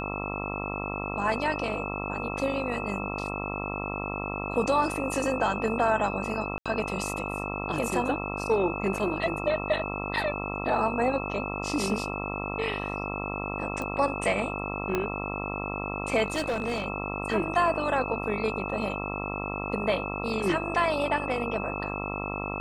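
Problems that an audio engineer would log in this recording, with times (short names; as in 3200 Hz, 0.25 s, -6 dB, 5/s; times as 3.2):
buzz 50 Hz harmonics 27 -34 dBFS
tone 2600 Hz -36 dBFS
6.58–6.66 gap 76 ms
13.82 pop -21 dBFS
14.95 pop -13 dBFS
16.26–16.86 clipped -24 dBFS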